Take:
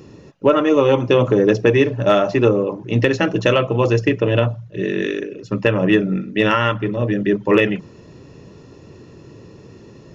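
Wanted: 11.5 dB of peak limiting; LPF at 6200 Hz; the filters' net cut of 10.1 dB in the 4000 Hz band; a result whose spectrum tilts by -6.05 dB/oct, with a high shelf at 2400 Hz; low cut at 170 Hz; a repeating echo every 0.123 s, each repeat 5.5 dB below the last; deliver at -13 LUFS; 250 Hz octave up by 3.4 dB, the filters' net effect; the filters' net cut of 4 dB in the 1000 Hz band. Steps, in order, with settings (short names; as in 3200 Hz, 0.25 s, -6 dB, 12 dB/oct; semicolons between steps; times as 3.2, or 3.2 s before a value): HPF 170 Hz; LPF 6200 Hz; bell 250 Hz +6 dB; bell 1000 Hz -3.5 dB; high shelf 2400 Hz -7 dB; bell 4000 Hz -8 dB; limiter -12.5 dBFS; feedback echo 0.123 s, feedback 53%, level -5.5 dB; gain +8 dB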